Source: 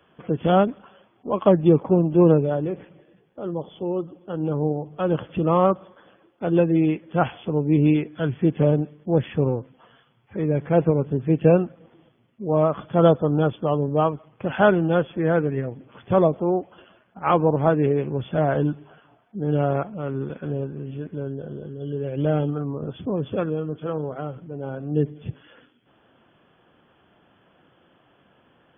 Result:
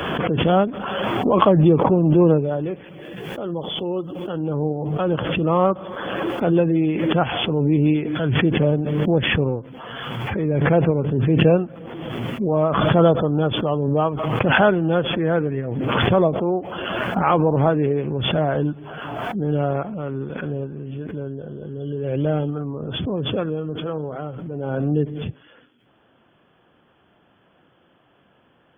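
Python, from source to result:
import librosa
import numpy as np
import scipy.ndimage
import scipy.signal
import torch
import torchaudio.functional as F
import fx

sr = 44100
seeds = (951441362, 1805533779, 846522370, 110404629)

y = fx.high_shelf(x, sr, hz=2100.0, db=9.5, at=(2.59, 4.41))
y = fx.pre_swell(y, sr, db_per_s=25.0)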